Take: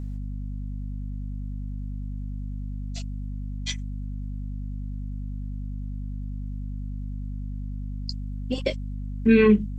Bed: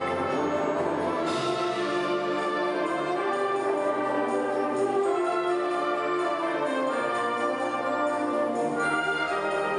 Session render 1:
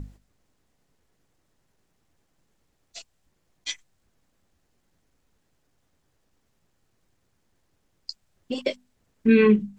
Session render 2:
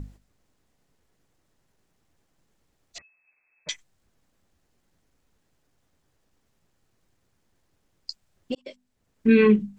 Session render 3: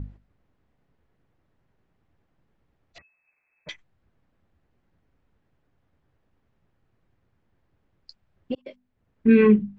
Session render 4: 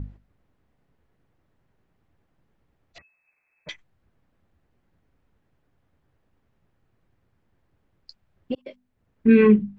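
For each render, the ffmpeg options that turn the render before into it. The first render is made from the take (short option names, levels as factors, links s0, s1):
-af "bandreject=f=50:t=h:w=6,bandreject=f=100:t=h:w=6,bandreject=f=150:t=h:w=6,bandreject=f=200:t=h:w=6,bandreject=f=250:t=h:w=6"
-filter_complex "[0:a]asettb=1/sr,asplit=3[s0][s1][s2];[s0]atrim=end=2.984[s3];[s1]atrim=start=2.98:end=3.69,asetpts=PTS-STARTPTS,afade=t=in:d=0.004:c=qsin,afade=t=out:st=0.706:d=0.004:c=qsin,lowpass=f=2200:t=q:w=0.5098,lowpass=f=2200:t=q:w=0.6013,lowpass=f=2200:t=q:w=0.9,lowpass=f=2200:t=q:w=2.563,afreqshift=-2600[s4];[s2]atrim=start=3.686[s5];[s3][s4]acrossfade=d=0.004:c1=hsin:c2=qsin[s6];[s6][s5]acrossfade=d=0.004:c1=qsin:c2=hsin,asplit=2[s7][s8];[s7]atrim=end=8.55,asetpts=PTS-STARTPTS,afade=t=out:st=8.546:d=0.004:c=hsin[s9];[s8]atrim=start=8.55,asetpts=PTS-STARTPTS,afade=t=in:d=0.72[s10];[s9][s10]concat=n=2:v=0:a=1"
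-af "lowpass=2400,equalizer=f=90:t=o:w=1.9:g=5"
-af "volume=1.12"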